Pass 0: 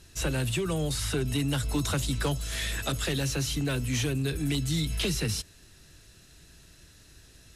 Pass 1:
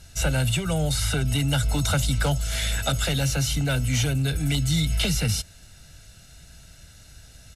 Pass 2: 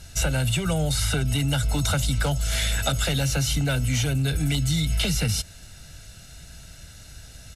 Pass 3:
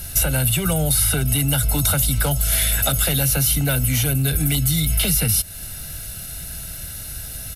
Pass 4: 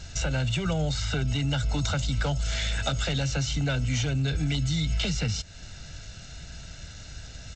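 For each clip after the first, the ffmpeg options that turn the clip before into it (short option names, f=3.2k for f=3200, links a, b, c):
-af "aecho=1:1:1.4:0.67,volume=3.5dB"
-af "acompressor=threshold=-24dB:ratio=6,volume=4dB"
-af "aexciter=amount=8.6:drive=4.6:freq=9.8k,acompressor=threshold=-29dB:ratio=2,volume=8.5dB"
-af "volume=-6dB" -ar 16000 -c:a g722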